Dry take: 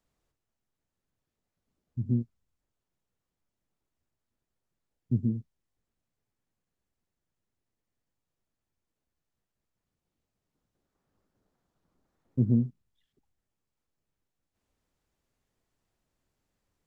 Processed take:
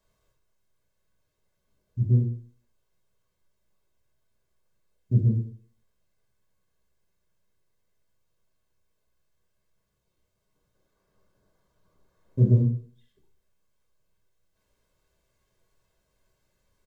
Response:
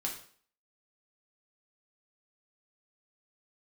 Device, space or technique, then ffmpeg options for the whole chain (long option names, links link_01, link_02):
microphone above a desk: -filter_complex "[0:a]aecho=1:1:1.9:0.63[link_01];[1:a]atrim=start_sample=2205[link_02];[link_01][link_02]afir=irnorm=-1:irlink=0,volume=4dB"